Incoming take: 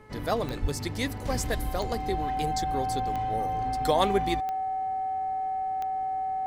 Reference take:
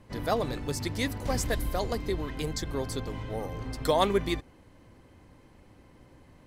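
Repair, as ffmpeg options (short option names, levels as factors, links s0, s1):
-filter_complex "[0:a]adeclick=t=4,bandreject=f=429.5:t=h:w=4,bandreject=f=859:t=h:w=4,bandreject=f=1288.5:t=h:w=4,bandreject=f=1718:t=h:w=4,bandreject=f=2147.5:t=h:w=4,bandreject=f=760:w=30,asplit=3[s0][s1][s2];[s0]afade=t=out:st=0.61:d=0.02[s3];[s1]highpass=f=140:w=0.5412,highpass=f=140:w=1.3066,afade=t=in:st=0.61:d=0.02,afade=t=out:st=0.73:d=0.02[s4];[s2]afade=t=in:st=0.73:d=0.02[s5];[s3][s4][s5]amix=inputs=3:normalize=0"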